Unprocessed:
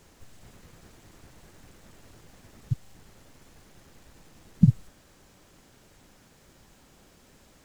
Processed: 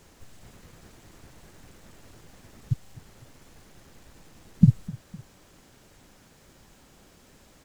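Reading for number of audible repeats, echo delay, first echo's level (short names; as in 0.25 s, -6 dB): 2, 0.254 s, -21.0 dB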